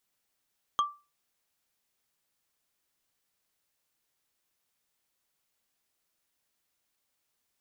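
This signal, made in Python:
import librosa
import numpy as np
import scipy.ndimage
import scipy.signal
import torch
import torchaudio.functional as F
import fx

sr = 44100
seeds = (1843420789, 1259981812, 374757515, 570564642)

y = fx.strike_wood(sr, length_s=0.45, level_db=-19.5, body='bar', hz=1170.0, decay_s=0.29, tilt_db=8.5, modes=5)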